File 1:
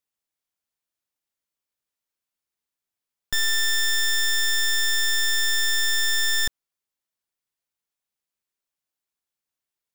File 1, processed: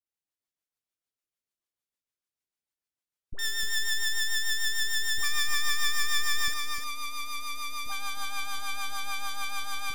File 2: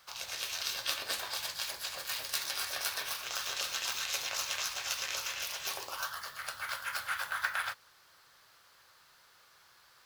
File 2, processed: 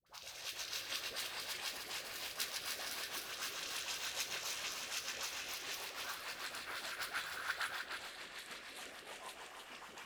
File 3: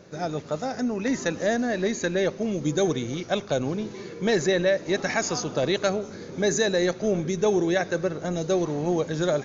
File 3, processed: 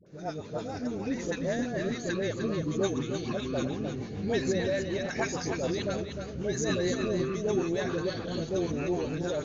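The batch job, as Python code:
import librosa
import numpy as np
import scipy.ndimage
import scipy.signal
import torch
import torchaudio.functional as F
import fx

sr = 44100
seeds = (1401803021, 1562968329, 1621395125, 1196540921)

p1 = fx.echo_pitch(x, sr, ms=197, semitones=-7, count=3, db_per_echo=-6.0)
p2 = fx.rotary(p1, sr, hz=6.7)
p3 = fx.dispersion(p2, sr, late='highs', ms=64.0, hz=710.0)
p4 = p3 + fx.echo_single(p3, sr, ms=304, db=-7.0, dry=0)
y = F.gain(torch.from_numpy(p4), -5.5).numpy()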